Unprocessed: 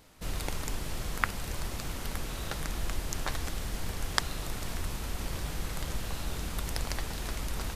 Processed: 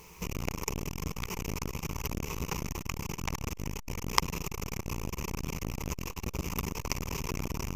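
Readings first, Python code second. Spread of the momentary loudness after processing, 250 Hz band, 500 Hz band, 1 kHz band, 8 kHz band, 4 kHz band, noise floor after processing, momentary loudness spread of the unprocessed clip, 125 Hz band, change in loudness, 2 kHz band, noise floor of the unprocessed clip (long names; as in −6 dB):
5 LU, +4.0 dB, +1.5 dB, +1.5 dB, +0.5 dB, −1.5 dB, −47 dBFS, 5 LU, +1.0 dB, 0.0 dB, −2.5 dB, −39 dBFS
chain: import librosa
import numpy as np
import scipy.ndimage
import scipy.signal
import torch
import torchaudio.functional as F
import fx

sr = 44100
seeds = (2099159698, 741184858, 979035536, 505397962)

y = fx.ripple_eq(x, sr, per_octave=0.77, db=17)
y = fx.dmg_noise_colour(y, sr, seeds[0], colour='white', level_db=-65.0)
y = fx.transformer_sat(y, sr, knee_hz=2500.0)
y = y * librosa.db_to_amplitude(3.5)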